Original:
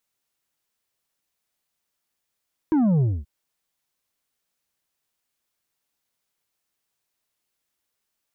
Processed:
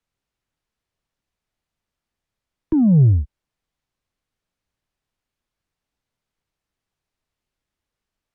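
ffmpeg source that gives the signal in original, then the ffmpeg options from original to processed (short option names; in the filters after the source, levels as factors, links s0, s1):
-f lavfi -i "aevalsrc='0.141*clip((0.53-t)/0.24,0,1)*tanh(2*sin(2*PI*330*0.53/log(65/330)*(exp(log(65/330)*t/0.53)-1)))/tanh(2)':d=0.53:s=44100"
-filter_complex "[0:a]aemphasis=mode=reproduction:type=bsi,acrossover=split=140|420|560[s0][s1][s2][s3];[s3]acompressor=threshold=0.00398:ratio=5[s4];[s0][s1][s2][s4]amix=inputs=4:normalize=0"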